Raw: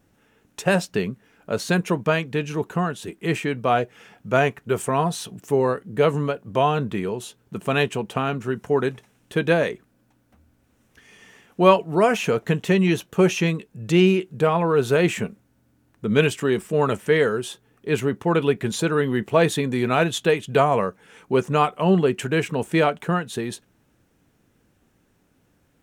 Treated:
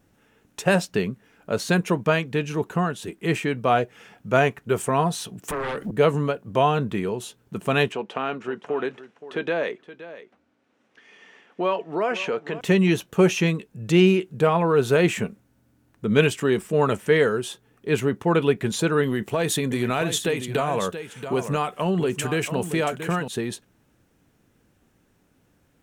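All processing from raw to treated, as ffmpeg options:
ffmpeg -i in.wav -filter_complex "[0:a]asettb=1/sr,asplit=3[link_01][link_02][link_03];[link_01]atrim=end=5.484[link_04];[link_02]atrim=start=5.48:end=5.91,asetpts=PTS-STARTPTS,afade=type=in:duration=0.004:curve=qsin,afade=type=out:start_time=0.426:duration=0.004:curve=qsin,afreqshift=14,acompressor=threshold=-38dB:ratio=2.5:attack=3.2:release=140:knee=1:detection=peak,aeval=exprs='0.0596*sin(PI/2*3.16*val(0)/0.0596)':channel_layout=same[link_05];[link_03]atrim=start=5.906[link_06];[link_04][link_05]acrossfade=duration=0.004:curve1=hsin:curve2=qsin[link_07];[link_07][link_06]acrossfade=duration=0.004:curve1=qsin:curve2=hsin,asettb=1/sr,asplit=3[link_08][link_09][link_10];[link_08]atrim=end=7.924[link_11];[link_09]atrim=start=7.92:end=12.61,asetpts=PTS-STARTPTS,afade=type=in:duration=0.004:curve=qsin,afade=type=out:start_time=4.686:duration=0.004:curve=qsin,acompressor=threshold=-20dB:ratio=3:attack=3.2:release=140:knee=1:detection=peak,highpass=300,lowpass=4100,aecho=1:1:521:0.178,atrim=end_sample=206829[link_12];[link_10]atrim=start=12.606[link_13];[link_11][link_12]acrossfade=duration=0.004:curve1=hsin:curve2=qsin[link_14];[link_14][link_13]acrossfade=duration=0.004:curve1=qsin:curve2=hsin,asettb=1/sr,asplit=3[link_15][link_16][link_17];[link_15]atrim=end=19.034[link_18];[link_16]atrim=start=19.03:end=23.28,asetpts=PTS-STARTPTS,afade=type=in:duration=0.004:curve=qsin,afade=type=out:start_time=4.246:duration=0.004:curve=qsin,highshelf=frequency=5400:gain=8,acompressor=threshold=-19dB:ratio=5:attack=3.2:release=140:knee=1:detection=peak,aecho=1:1:679:0.316,atrim=end_sample=187425[link_19];[link_17]atrim=start=23.276[link_20];[link_18][link_19]acrossfade=duration=0.004:curve1=hsin:curve2=qsin[link_21];[link_21][link_20]acrossfade=duration=0.004:curve1=qsin:curve2=hsin" out.wav

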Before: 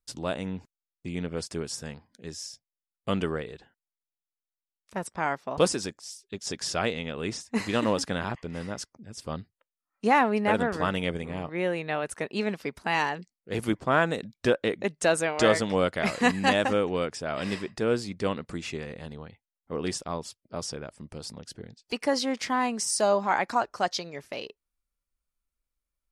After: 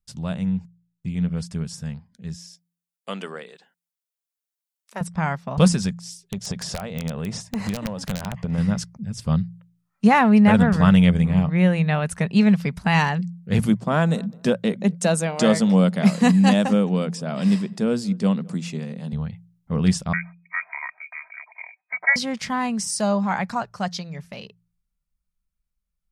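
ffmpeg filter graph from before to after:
ffmpeg -i in.wav -filter_complex "[0:a]asettb=1/sr,asplit=3[link_01][link_02][link_03];[link_01]atrim=end=2.364[link_04];[link_02]atrim=start=2.36:end=5.01,asetpts=PTS-STARTPTS,afade=type=in:duration=0.004:curve=qsin,afade=type=out:start_time=2.646:duration=0.004:curve=qsin,acrossover=split=4400[link_05][link_06];[link_06]acompressor=threshold=-48dB:ratio=4:attack=1:release=60[link_07];[link_05][link_07]amix=inputs=2:normalize=0,highpass=frequency=320:width=0.5412,highpass=frequency=320:width=1.3066,highshelf=frequency=6200:gain=8[link_08];[link_03]atrim=start=5.006[link_09];[link_04][link_08]acrossfade=duration=0.004:curve1=hsin:curve2=qsin[link_10];[link_10][link_09]acrossfade=duration=0.004:curve1=qsin:curve2=hsin,asettb=1/sr,asplit=3[link_11][link_12][link_13];[link_11]atrim=end=6.214[link_14];[link_12]atrim=start=6.21:end=8.58,asetpts=PTS-STARTPTS,afade=type=in:duration=0.004:curve=qsin,afade=type=out:start_time=2.366:duration=0.004:curve=qsin,equalizer=frequency=630:width=0.77:gain=10,acompressor=threshold=-31dB:ratio=12:attack=3.2:release=140:knee=1:detection=peak,aeval=exprs='(mod(15.8*val(0)+1,2)-1)/15.8':channel_layout=same[link_15];[link_13]atrim=start=8.576[link_16];[link_14][link_15]acrossfade=duration=0.004:curve1=hsin:curve2=qsin[link_17];[link_17][link_16]acrossfade=duration=0.004:curve1=qsin:curve2=hsin,asettb=1/sr,asplit=3[link_18][link_19][link_20];[link_18]atrim=end=13.654[link_21];[link_19]atrim=start=13.65:end=19.13,asetpts=PTS-STARTPTS,afade=type=in:duration=0.004:curve=qsin,afade=type=out:start_time=5.476:duration=0.004:curve=qsin,highpass=frequency=190:width=0.5412,highpass=frequency=190:width=1.3066,equalizer=frequency=1800:width=0.65:gain=-8,asplit=2[link_22][link_23];[link_23]adelay=208,lowpass=frequency=1200:poles=1,volume=-23.5dB,asplit=2[link_24][link_25];[link_25]adelay=208,lowpass=frequency=1200:poles=1,volume=0.21[link_26];[link_22][link_24][link_26]amix=inputs=3:normalize=0,atrim=end_sample=241668[link_27];[link_20]atrim=start=19.126[link_28];[link_21][link_27]acrossfade=duration=0.004:curve1=hsin:curve2=qsin[link_29];[link_29][link_28]acrossfade=duration=0.004:curve1=qsin:curve2=hsin,asettb=1/sr,asplit=3[link_30][link_31][link_32];[link_30]atrim=end=20.134[link_33];[link_31]atrim=start=20.13:end=22.16,asetpts=PTS-STARTPTS,afade=type=in:duration=0.004:curve=qsin,afade=type=out:start_time=2.026:duration=0.004:curve=qsin,aecho=1:1:3.3:0.66,atrim=end_sample=89523,lowpass=frequency=2100:width_type=q:width=0.5098,lowpass=frequency=2100:width_type=q:width=0.6013,lowpass=frequency=2100:width_type=q:width=0.9,lowpass=frequency=2100:width_type=q:width=2.563,afreqshift=-2500,highpass=frequency=750:width_type=q:width=2.5[link_34];[link_32]atrim=start=22.156[link_35];[link_33][link_34]acrossfade=duration=0.004:curve1=hsin:curve2=qsin[link_36];[link_36][link_35]acrossfade=duration=0.004:curve1=qsin:curve2=hsin,dynaudnorm=framelen=720:gausssize=13:maxgain=11.5dB,lowshelf=frequency=240:width_type=q:width=3:gain=9,bandreject=frequency=57.39:width_type=h:width=4,bandreject=frequency=114.78:width_type=h:width=4,bandreject=frequency=172.17:width_type=h:width=4,volume=-2.5dB" out.wav

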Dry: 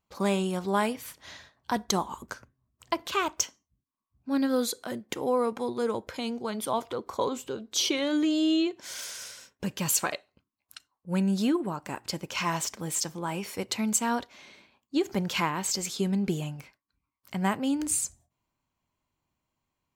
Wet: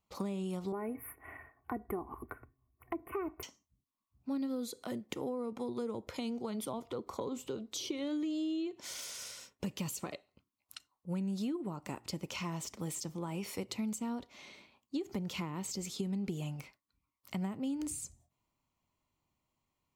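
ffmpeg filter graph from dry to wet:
ffmpeg -i in.wav -filter_complex "[0:a]asettb=1/sr,asplit=3[link_01][link_02][link_03];[link_01]atrim=end=0.724[link_04];[link_02]atrim=start=0.72:end=3.43,asetpts=PTS-STARTPTS,afade=type=in:duration=0.004:curve=qsin,afade=type=out:start_time=2.706:duration=0.004:curve=qsin,asuperstop=centerf=5100:order=12:qfactor=0.65,aecho=1:1:2.7:0.71,atrim=end_sample=119511[link_05];[link_03]atrim=start=3.426[link_06];[link_04][link_05]acrossfade=duration=0.004:curve1=hsin:curve2=qsin[link_07];[link_07][link_06]acrossfade=duration=0.004:curve1=qsin:curve2=hsin,acrossover=split=400[link_08][link_09];[link_09]acompressor=threshold=-39dB:ratio=4[link_10];[link_08][link_10]amix=inputs=2:normalize=0,bandreject=frequency=1600:width=5.9,acompressor=threshold=-32dB:ratio=6,volume=-1.5dB" out.wav

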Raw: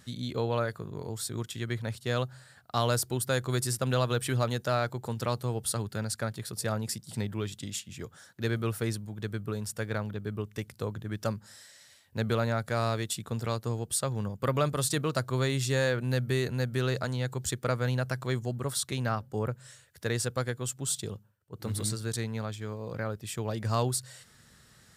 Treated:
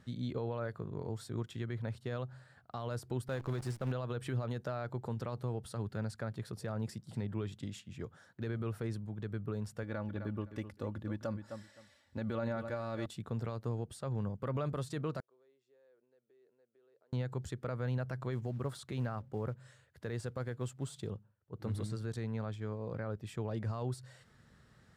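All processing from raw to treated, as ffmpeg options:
ffmpeg -i in.wav -filter_complex "[0:a]asettb=1/sr,asplit=3[link_01][link_02][link_03];[link_01]atrim=end=3.284[link_04];[link_02]atrim=start=3.28:end=3.92,asetpts=PTS-STARTPTS,afade=type=in:duration=0.004:curve=qsin,afade=type=out:start_time=0.636:duration=0.004:curve=qsin,highshelf=frequency=8000:gain=-5,acrusher=bits=7:dc=4:mix=0:aa=0.000001[link_05];[link_03]atrim=start=3.916[link_06];[link_04][link_05]acrossfade=duration=0.004:curve1=hsin:curve2=qsin[link_07];[link_07][link_06]acrossfade=duration=0.004:curve1=qsin:curve2=hsin,asettb=1/sr,asplit=3[link_08][link_09][link_10];[link_08]atrim=end=9.834[link_11];[link_09]atrim=start=9.83:end=13.06,asetpts=PTS-STARTPTS,afade=type=in:duration=0.004:curve=qsin,afade=type=out:start_time=3.226:duration=0.004:curve=qsin,aecho=1:1:3.5:0.55,atrim=end_sample=142443,aecho=1:1:258|516:0.224|0.0425,atrim=end_sample=142443[link_12];[link_10]atrim=start=13.056[link_13];[link_11][link_12]acrossfade=duration=0.004:curve1=hsin:curve2=qsin[link_14];[link_14][link_13]acrossfade=duration=0.004:curve1=qsin:curve2=hsin,asettb=1/sr,asplit=3[link_15][link_16][link_17];[link_15]atrim=end=15.204[link_18];[link_16]atrim=start=15.2:end=17.13,asetpts=PTS-STARTPTS,afade=type=in:duration=0.004:curve=qsin,afade=type=out:start_time=1.926:duration=0.004:curve=qsin,acompressor=threshold=-30dB:ratio=10:attack=3.2:release=140:knee=1:detection=peak,bandpass=frequency=420:width_type=q:width=2.9,aderivative[link_19];[link_17]atrim=start=17.126[link_20];[link_18][link_19]acrossfade=duration=0.004:curve1=hsin:curve2=qsin[link_21];[link_21][link_20]acrossfade=duration=0.004:curve1=qsin:curve2=hsin,asettb=1/sr,asplit=3[link_22][link_23][link_24];[link_22]atrim=end=18.324[link_25];[link_23]atrim=start=18.32:end=21.08,asetpts=PTS-STARTPTS,afade=type=in:duration=0.004:curve=qsin,afade=type=out:start_time=2.756:duration=0.004:curve=qsin,bandreject=frequency=5600:width=20,acrusher=bits=6:mode=log:mix=0:aa=0.000001[link_26];[link_24]atrim=start=21.076[link_27];[link_25][link_26]acrossfade=duration=0.004:curve1=hsin:curve2=qsin[link_28];[link_28][link_27]acrossfade=duration=0.004:curve1=qsin:curve2=hsin,alimiter=level_in=0.5dB:limit=-24dB:level=0:latency=1:release=73,volume=-0.5dB,lowpass=frequency=1300:poles=1,volume=-2dB" out.wav

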